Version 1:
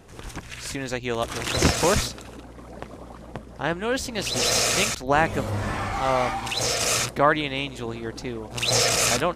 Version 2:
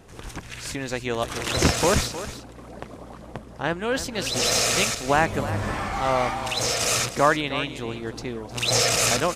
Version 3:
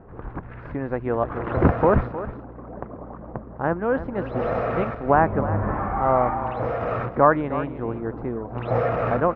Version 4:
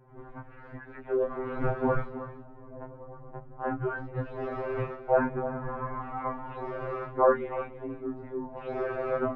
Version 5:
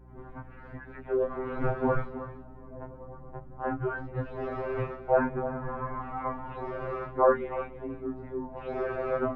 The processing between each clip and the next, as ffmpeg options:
ffmpeg -i in.wav -af "aecho=1:1:310:0.224" out.wav
ffmpeg -i in.wav -af "lowpass=frequency=1400:width=0.5412,lowpass=frequency=1400:width=1.3066,volume=3.5dB" out.wav
ffmpeg -i in.wav -af "flanger=delay=20:depth=2.2:speed=0.28,afreqshift=-70,afftfilt=real='re*2.45*eq(mod(b,6),0)':imag='im*2.45*eq(mod(b,6),0)':win_size=2048:overlap=0.75,volume=-2.5dB" out.wav
ffmpeg -i in.wav -af "aeval=exprs='val(0)+0.00282*(sin(2*PI*60*n/s)+sin(2*PI*2*60*n/s)/2+sin(2*PI*3*60*n/s)/3+sin(2*PI*4*60*n/s)/4+sin(2*PI*5*60*n/s)/5)':channel_layout=same" out.wav

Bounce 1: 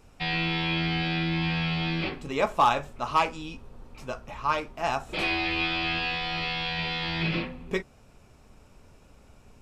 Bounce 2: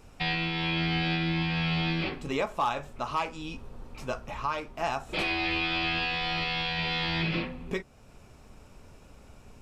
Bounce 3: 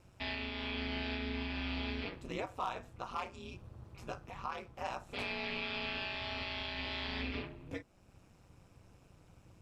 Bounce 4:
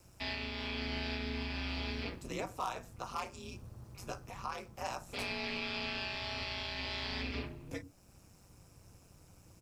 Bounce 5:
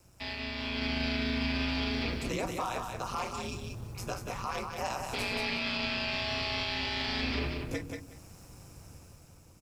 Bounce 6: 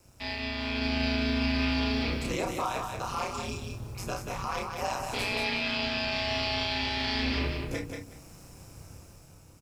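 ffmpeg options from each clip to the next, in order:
ffmpeg -i in.wav -af "alimiter=limit=-22dB:level=0:latency=1:release=384,volume=2.5dB" out.wav
ffmpeg -i in.wav -af "aeval=exprs='val(0)*sin(2*PI*96*n/s)':channel_layout=same,volume=-7dB" out.wav
ffmpeg -i in.wav -filter_complex "[0:a]acrossover=split=290|410|2000[link_01][link_02][link_03][link_04];[link_01]aecho=1:1:98:0.531[link_05];[link_04]aexciter=amount=2.7:drive=6.8:freq=4700[link_06];[link_05][link_02][link_03][link_06]amix=inputs=4:normalize=0" out.wav
ffmpeg -i in.wav -af "dynaudnorm=framelen=180:gausssize=9:maxgain=8dB,alimiter=level_in=0.5dB:limit=-24dB:level=0:latency=1:release=27,volume=-0.5dB,aecho=1:1:184|368|552:0.562|0.101|0.0182" out.wav
ffmpeg -i in.wav -filter_complex "[0:a]asplit=2[link_01][link_02];[link_02]adelay=31,volume=-4dB[link_03];[link_01][link_03]amix=inputs=2:normalize=0,volume=1dB" out.wav

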